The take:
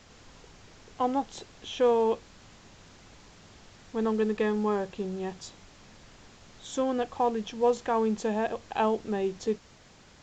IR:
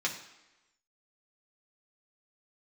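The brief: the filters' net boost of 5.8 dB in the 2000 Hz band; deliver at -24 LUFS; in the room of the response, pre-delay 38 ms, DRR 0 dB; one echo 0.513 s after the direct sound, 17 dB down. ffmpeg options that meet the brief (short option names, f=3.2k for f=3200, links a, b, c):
-filter_complex "[0:a]equalizer=f=2k:t=o:g=7.5,aecho=1:1:513:0.141,asplit=2[a][b];[1:a]atrim=start_sample=2205,adelay=38[c];[b][c]afir=irnorm=-1:irlink=0,volume=-6.5dB[d];[a][d]amix=inputs=2:normalize=0,volume=3dB"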